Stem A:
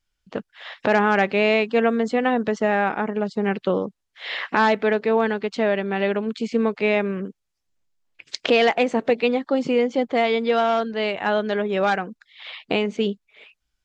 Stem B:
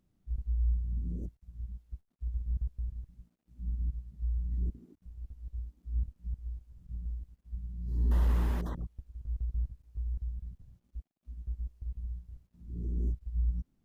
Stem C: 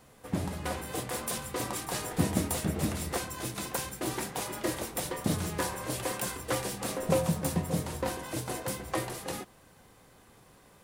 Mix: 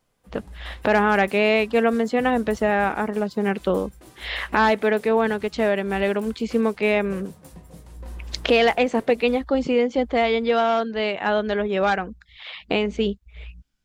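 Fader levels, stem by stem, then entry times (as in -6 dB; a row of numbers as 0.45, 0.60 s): 0.0, -10.0, -15.0 dB; 0.00, 0.00, 0.00 s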